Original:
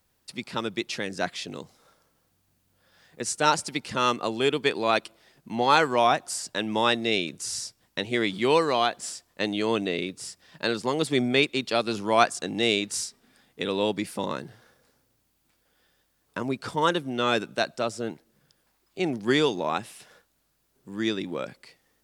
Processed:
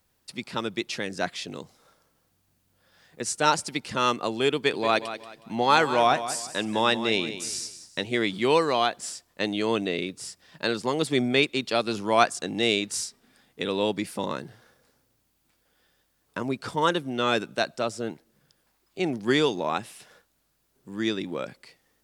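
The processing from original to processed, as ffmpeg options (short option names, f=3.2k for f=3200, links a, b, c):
-filter_complex "[0:a]asettb=1/sr,asplit=3[a][b][c];[a]atrim=end=4.554[d];[b]atrim=start=4.55:end=8.04,asetpts=PTS-STARTPTS,afade=t=in:d=0.004:c=qsin,afade=t=out:st=3.486:d=0.004:c=qsin,aecho=1:1:183|366|549:0.251|0.0779|0.0241,atrim=end_sample=153909[e];[c]atrim=start=8.036[f];[d][e]acrossfade=d=0.004:c1=hsin:c2=qsin[g];[g][f]acrossfade=d=0.004:c1=qsin:c2=hsin"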